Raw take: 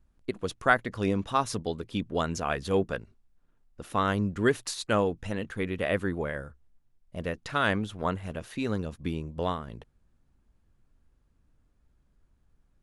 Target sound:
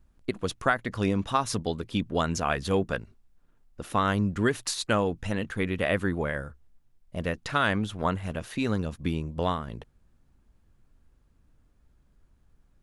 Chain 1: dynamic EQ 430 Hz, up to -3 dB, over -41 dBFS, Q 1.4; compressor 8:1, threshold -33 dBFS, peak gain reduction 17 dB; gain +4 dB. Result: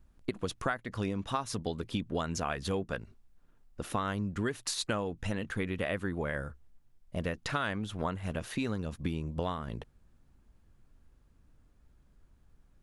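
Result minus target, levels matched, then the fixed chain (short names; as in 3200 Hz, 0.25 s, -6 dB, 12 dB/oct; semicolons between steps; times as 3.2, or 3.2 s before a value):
compressor: peak gain reduction +9 dB
dynamic EQ 430 Hz, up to -3 dB, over -41 dBFS, Q 1.4; compressor 8:1, threshold -23 dBFS, peak gain reduction 8 dB; gain +4 dB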